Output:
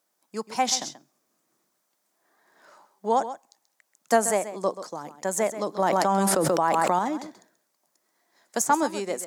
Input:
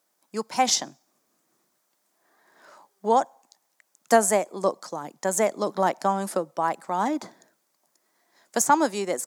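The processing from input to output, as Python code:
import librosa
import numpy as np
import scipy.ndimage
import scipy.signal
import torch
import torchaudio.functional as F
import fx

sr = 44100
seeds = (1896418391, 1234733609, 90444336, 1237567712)

y = x + 10.0 ** (-12.5 / 20.0) * np.pad(x, (int(133 * sr / 1000.0), 0))[:len(x)]
y = fx.env_flatten(y, sr, amount_pct=100, at=(5.79, 6.99))
y = y * 10.0 ** (-2.5 / 20.0)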